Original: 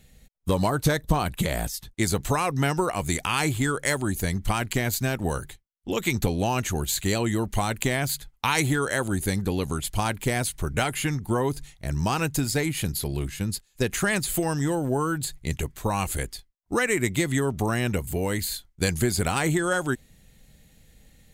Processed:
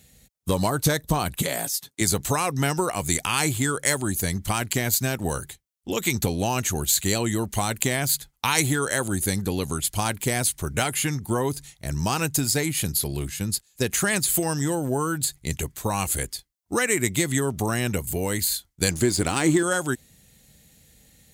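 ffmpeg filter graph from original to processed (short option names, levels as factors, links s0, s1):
-filter_complex "[0:a]asettb=1/sr,asplit=3[s0][s1][s2];[s0]atrim=end=1.424[s3];[s1]atrim=start=1.42:end=2.01,asetpts=PTS-STARTPTS,afade=t=in:d=0.004:c=qsin,afade=t=out:st=0.586:d=0.004:c=qsin,highpass=220,aecho=1:1:7.2:0.37,atrim=end_sample=26019[s4];[s2]atrim=start=2.006[s5];[s3][s4]acrossfade=d=0.004:c1=hsin:c2=qsin[s6];[s6][s5]acrossfade=d=0.004:c1=qsin:c2=hsin,asettb=1/sr,asplit=3[s7][s8][s9];[s7]atrim=end=18.914[s10];[s8]atrim=start=18.91:end=19.63,asetpts=PTS-STARTPTS,afade=t=in:d=0.004:c=qsin,afade=t=out:st=0.716:d=0.004:c=qsin,lowpass=8700,equalizer=f=310:t=o:w=0.38:g=10.5,aeval=exprs='sgn(val(0))*max(abs(val(0))-0.0075,0)':c=same[s11];[s9]atrim=start=19.626[s12];[s10][s11]acrossfade=d=0.004:c1=hsin:c2=qsin[s13];[s13][s12]acrossfade=d=0.004:c1=qsin:c2=hsin,highpass=59,bass=f=250:g=0,treble=f=4000:g=7"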